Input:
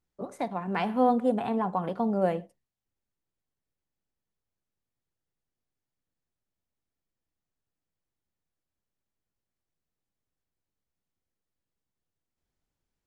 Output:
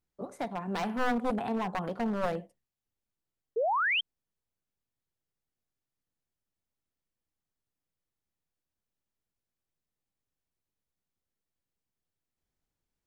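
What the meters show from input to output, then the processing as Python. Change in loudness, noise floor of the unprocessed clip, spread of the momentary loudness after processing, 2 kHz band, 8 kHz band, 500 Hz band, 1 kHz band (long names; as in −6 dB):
−3.5 dB, below −85 dBFS, 11 LU, +9.5 dB, can't be measured, −4.0 dB, −2.5 dB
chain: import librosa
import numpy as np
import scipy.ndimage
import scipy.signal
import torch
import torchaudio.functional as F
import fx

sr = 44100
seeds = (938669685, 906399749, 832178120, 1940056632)

y = np.minimum(x, 2.0 * 10.0 ** (-23.0 / 20.0) - x)
y = fx.spec_paint(y, sr, seeds[0], shape='rise', start_s=3.56, length_s=0.45, low_hz=420.0, high_hz=3300.0, level_db=-25.0)
y = y * librosa.db_to_amplitude(-2.5)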